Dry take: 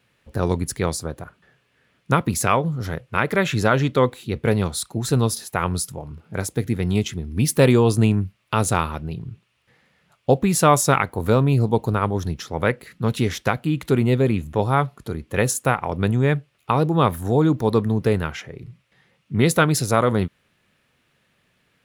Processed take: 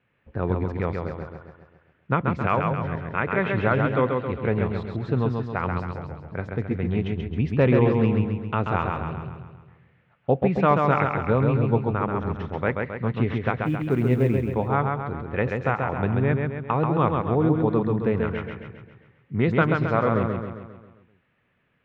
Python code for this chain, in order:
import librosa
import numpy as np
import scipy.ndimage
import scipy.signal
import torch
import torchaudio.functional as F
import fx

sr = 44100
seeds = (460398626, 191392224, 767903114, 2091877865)

y = scipy.signal.sosfilt(scipy.signal.butter(4, 2600.0, 'lowpass', fs=sr, output='sos'), x)
y = fx.quant_companded(y, sr, bits=8, at=(13.62, 14.48))
y = fx.echo_feedback(y, sr, ms=134, feedback_pct=52, wet_db=-4)
y = y * 10.0 ** (-4.5 / 20.0)